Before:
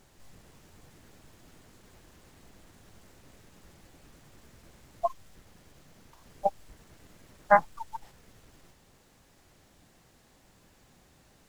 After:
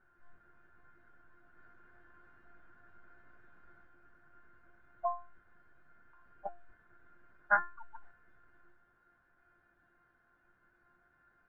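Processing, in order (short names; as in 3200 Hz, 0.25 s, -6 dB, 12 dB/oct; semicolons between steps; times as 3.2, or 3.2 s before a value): 1.57–3.85 sample leveller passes 1; synth low-pass 1500 Hz, resonance Q 14; resonator 350 Hz, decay 0.31 s, harmonics all, mix 90%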